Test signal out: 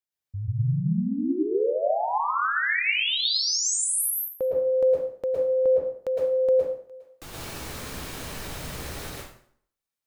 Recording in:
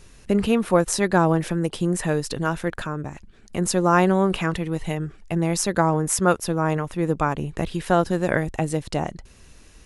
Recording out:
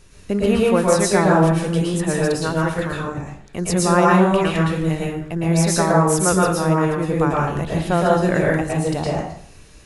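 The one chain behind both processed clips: plate-style reverb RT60 0.6 s, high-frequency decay 0.8×, pre-delay 0.1 s, DRR -4.5 dB; gain -1.5 dB

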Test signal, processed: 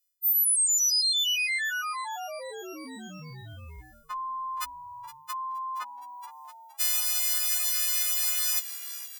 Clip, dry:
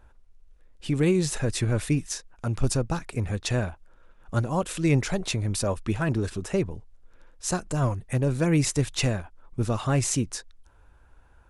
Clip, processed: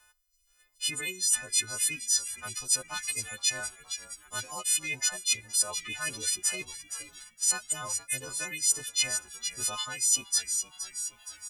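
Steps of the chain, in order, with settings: frequency quantiser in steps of 3 st; recorder AGC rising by 6.3 dB/s; reverb removal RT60 1.1 s; low shelf 470 Hz -9 dB; frequency-shifting echo 0.469 s, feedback 55%, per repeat -71 Hz, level -17 dB; reverse; compressor 6:1, threshold -28 dBFS; reverse; tilt shelf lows -9.5 dB, about 1200 Hz; gain -4 dB

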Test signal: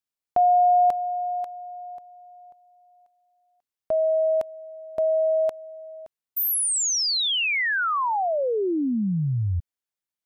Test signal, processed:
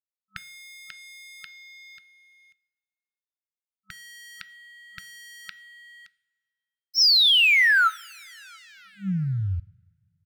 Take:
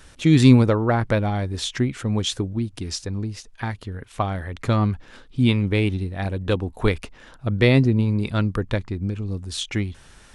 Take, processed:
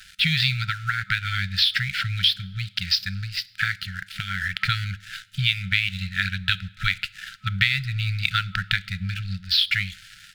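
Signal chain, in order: downsampling 11025 Hz; tilt shelf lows -9.5 dB, about 700 Hz; compressor 6:1, threshold -25 dBFS; crossover distortion -46.5 dBFS; two-slope reverb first 0.51 s, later 2.3 s, from -17 dB, DRR 17.5 dB; FFT band-reject 200–1300 Hz; gain +8.5 dB

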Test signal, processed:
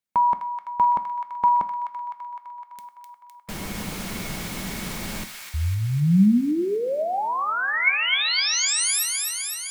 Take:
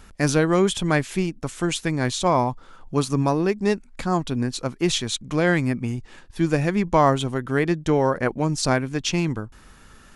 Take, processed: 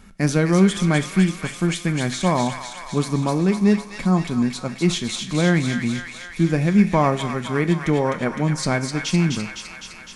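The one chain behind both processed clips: small resonant body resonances 200/2200 Hz, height 12 dB, ringing for 55 ms; on a send: thin delay 0.255 s, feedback 70%, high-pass 1400 Hz, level -4 dB; on the sum: two-slope reverb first 0.44 s, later 1.9 s, from -20 dB, DRR 10 dB; gain -2.5 dB

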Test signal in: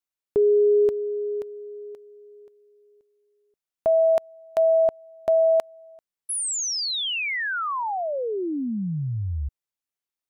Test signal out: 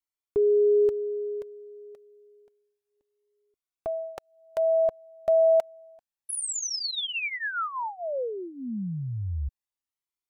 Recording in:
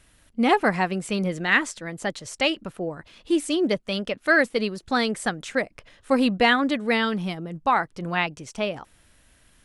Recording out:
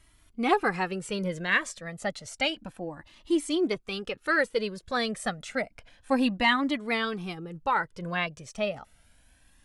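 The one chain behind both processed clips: cascading flanger rising 0.3 Hz

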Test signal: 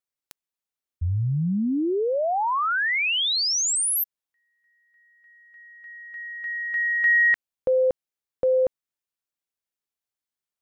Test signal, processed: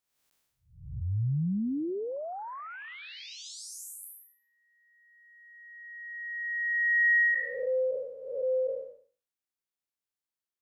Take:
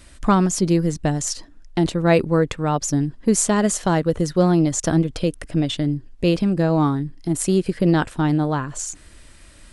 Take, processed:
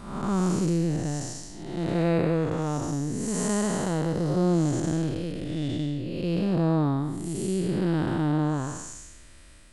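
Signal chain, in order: time blur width 0.358 s; gain -2.5 dB

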